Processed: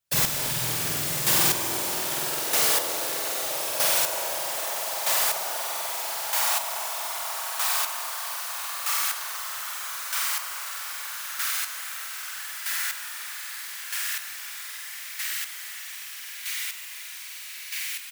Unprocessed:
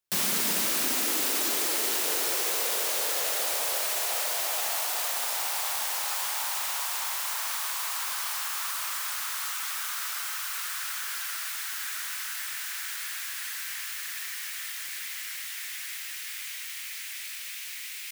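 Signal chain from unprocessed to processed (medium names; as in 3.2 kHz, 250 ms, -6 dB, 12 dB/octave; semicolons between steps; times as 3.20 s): comb 3.5 ms, depth 98%; whisper effect; resonant low shelf 180 Hz +7 dB, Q 3; flutter echo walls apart 8.3 m, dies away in 1.3 s; square tremolo 0.79 Hz, depth 60%, duty 20%; feedback echo behind a band-pass 245 ms, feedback 78%, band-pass 560 Hz, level -5 dB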